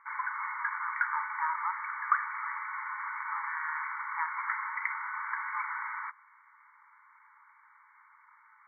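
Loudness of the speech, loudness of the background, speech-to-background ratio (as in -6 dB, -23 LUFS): -39.5 LUFS, -35.0 LUFS, -4.5 dB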